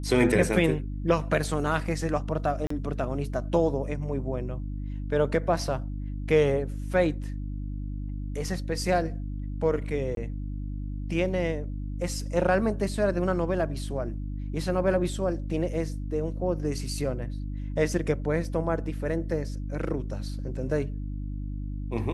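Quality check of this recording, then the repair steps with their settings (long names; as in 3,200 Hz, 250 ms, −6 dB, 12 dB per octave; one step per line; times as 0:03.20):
mains hum 50 Hz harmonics 6 −33 dBFS
0:02.67–0:02.70: drop-out 34 ms
0:10.15–0:10.17: drop-out 22 ms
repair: hum removal 50 Hz, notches 6
repair the gap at 0:02.67, 34 ms
repair the gap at 0:10.15, 22 ms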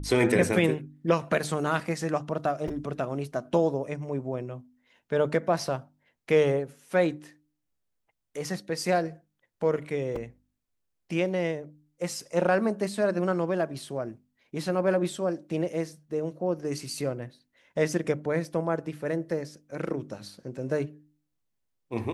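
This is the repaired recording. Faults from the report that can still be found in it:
none of them is left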